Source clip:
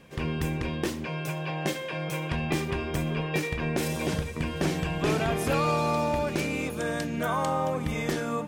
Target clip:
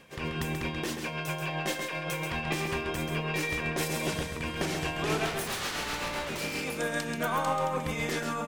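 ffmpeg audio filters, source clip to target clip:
ffmpeg -i in.wav -filter_complex "[0:a]lowshelf=frequency=440:gain=-8.5,asettb=1/sr,asplit=3[link_01][link_02][link_03];[link_01]atrim=end=5.254[link_04];[link_02]atrim=start=5.25:end=6.64,asetpts=PTS-STARTPTS,afade=type=in:duration=0.004:curve=qsin,afade=type=out:start_time=1.386:duration=0.004:curve=qsin,aeval=exprs='0.0282*(abs(mod(val(0)/0.0282+3,4)-2)-1)':channel_layout=same[link_05];[link_03]atrim=start=6.636[link_06];[link_04][link_05]acrossfade=duration=0.004:curve1=hsin:curve2=qsin[link_07];[link_07][link_06]acrossfade=duration=0.004:curve1=qsin:curve2=hsin,aeval=exprs='(tanh(15.8*val(0)+0.15)-tanh(0.15))/15.8':channel_layout=same,tremolo=f=7.6:d=0.37,asplit=2[link_08][link_09];[link_09]aecho=0:1:134:0.501[link_10];[link_08][link_10]amix=inputs=2:normalize=0,volume=3.5dB" out.wav

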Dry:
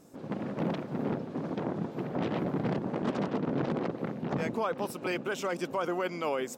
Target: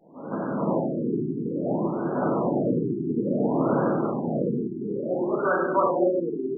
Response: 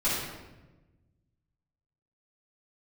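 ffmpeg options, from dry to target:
-filter_complex "[0:a]aemphasis=mode=production:type=riaa[link_01];[1:a]atrim=start_sample=2205[link_02];[link_01][link_02]afir=irnorm=-1:irlink=0,afftfilt=real='re*lt(b*sr/1024,420*pow(1700/420,0.5+0.5*sin(2*PI*0.58*pts/sr)))':imag='im*lt(b*sr/1024,420*pow(1700/420,0.5+0.5*sin(2*PI*0.58*pts/sr)))':win_size=1024:overlap=0.75"

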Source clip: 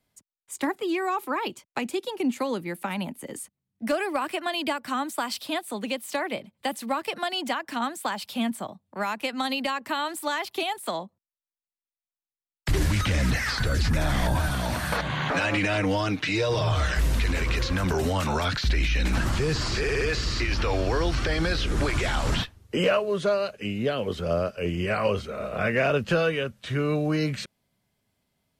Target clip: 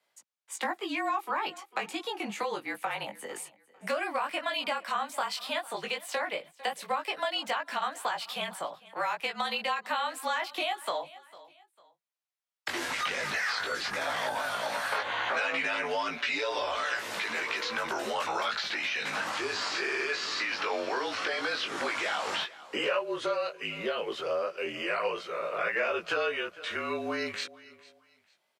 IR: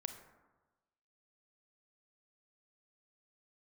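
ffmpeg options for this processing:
-af "afreqshift=-40,highpass=610,aecho=1:1:450|900:0.0708|0.0212,flanger=delay=17.5:depth=3.1:speed=0.12,lowpass=frequency=3800:poles=1,acompressor=threshold=-40dB:ratio=2,volume=8dB"

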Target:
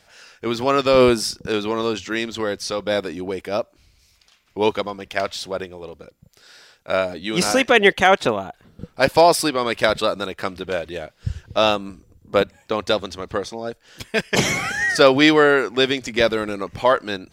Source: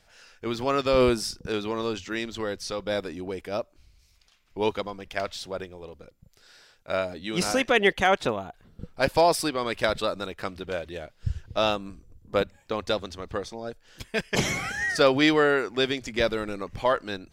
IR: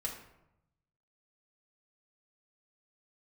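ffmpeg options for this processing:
-af "highpass=frequency=110:poles=1,volume=7dB"

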